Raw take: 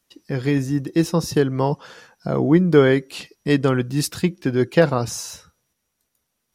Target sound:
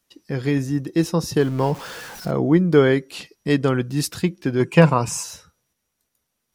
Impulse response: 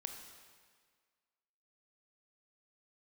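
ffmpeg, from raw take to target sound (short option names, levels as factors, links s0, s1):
-filter_complex "[0:a]asettb=1/sr,asplit=3[s0][s1][s2];[s0]atrim=end=1.404[s3];[s1]atrim=start=1.4:end=2.31,asetpts=PTS-STARTPTS,afade=t=in:d=0.004:c=qsin,afade=t=out:st=0.906:d=0.004:c=qsin,aeval=exprs='val(0)+0.5*0.0266*sgn(val(0))':c=same[s4];[s2]atrim=start=2.306[s5];[s3][s4]acrossfade=d=0.004:c1=hsin:c2=qsin[s6];[s6][s5]acrossfade=d=0.004:c1=qsin:c2=hsin,asettb=1/sr,asplit=3[s7][s8][s9];[s7]atrim=end=4.604[s10];[s8]atrim=start=4.6:end=5.24,asetpts=PTS-STARTPTS,afade=t=in:d=0.004:c=qsin,afade=t=out:st=0.636:d=0.004:c=qsin,equalizer=f=160:t=o:w=0.33:g=10,equalizer=f=1000:t=o:w=0.33:g=12,equalizer=f=2500:t=o:w=0.33:g=11,equalizer=f=4000:t=o:w=0.33:g=-7,equalizer=f=8000:t=o:w=0.33:g=11[s11];[s9]atrim=start=5.236[s12];[s10][s11]acrossfade=d=0.004:c1=hsin:c2=qsin[s13];[s13][s12]acrossfade=d=0.004:c1=qsin:c2=hsin,volume=0.891"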